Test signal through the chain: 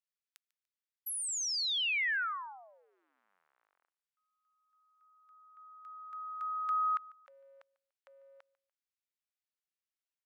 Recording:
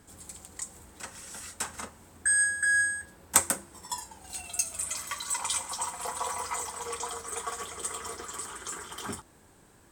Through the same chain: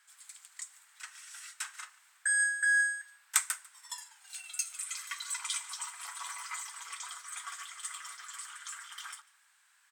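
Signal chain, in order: octave divider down 2 oct, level -3 dB; high-pass 1.4 kHz 24 dB/octave; treble shelf 5.7 kHz -8.5 dB; on a send: feedback delay 146 ms, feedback 36%, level -23 dB

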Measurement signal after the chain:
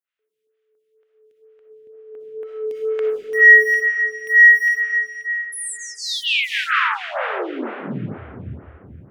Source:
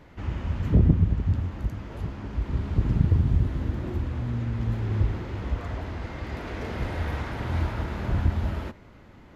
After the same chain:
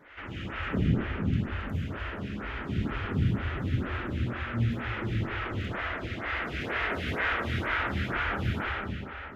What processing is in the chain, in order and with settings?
high-pass 97 Hz 6 dB/octave; high-order bell 2.1 kHz +11.5 dB; de-hum 155.4 Hz, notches 12; in parallel at -6.5 dB: hard clipper -23.5 dBFS; on the sum: algorithmic reverb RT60 3.3 s, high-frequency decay 0.75×, pre-delay 20 ms, DRR -4 dB; lamp-driven phase shifter 2.1 Hz; trim -6 dB

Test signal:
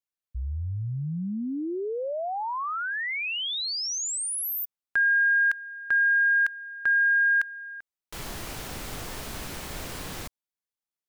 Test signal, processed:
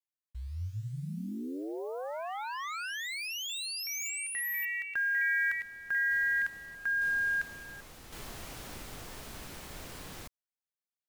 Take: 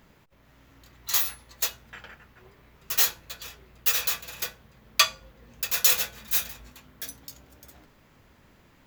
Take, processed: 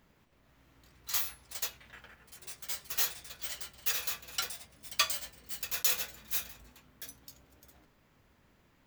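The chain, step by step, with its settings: block-companded coder 5-bit; ever faster or slower copies 183 ms, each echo +3 st, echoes 3, each echo -6 dB; trim -8.5 dB

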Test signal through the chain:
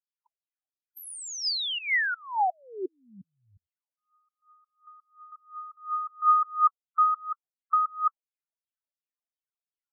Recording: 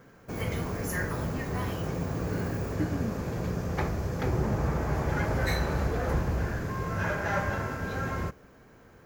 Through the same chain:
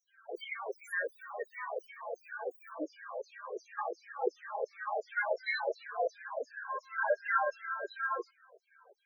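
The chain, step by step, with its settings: LFO high-pass saw down 2.8 Hz 430–6700 Hz; loudest bins only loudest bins 8; treble shelf 7.4 kHz -11.5 dB

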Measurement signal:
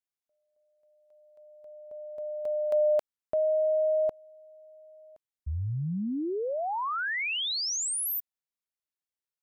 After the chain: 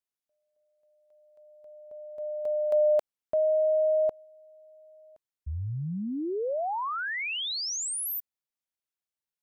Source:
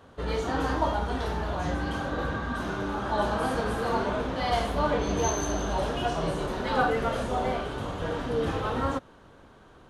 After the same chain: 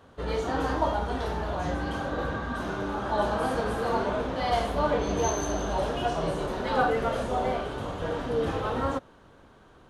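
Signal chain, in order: dynamic bell 580 Hz, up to +3 dB, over -37 dBFS, Q 1; trim -1.5 dB

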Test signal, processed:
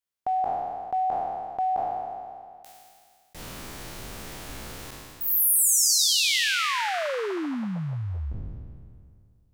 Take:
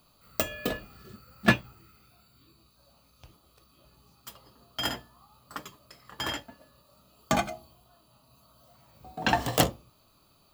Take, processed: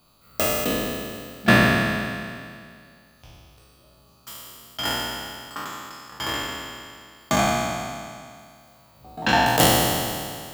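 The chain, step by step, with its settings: spectral sustain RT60 2.20 s; trim +1 dB

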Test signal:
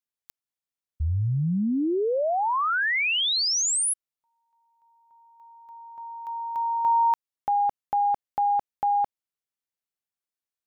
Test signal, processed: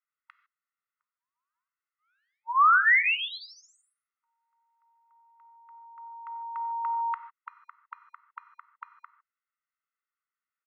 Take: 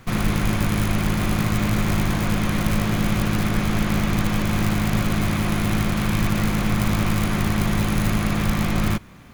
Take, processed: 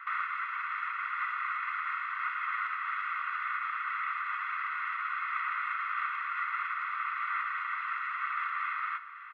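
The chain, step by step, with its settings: low-pass 1.9 kHz 24 dB/octave; comb 1.5 ms, depth 89%; compression 6:1, threshold -25 dBFS; brick-wall FIR high-pass 940 Hz; gated-style reverb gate 170 ms flat, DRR 10 dB; trim +7.5 dB

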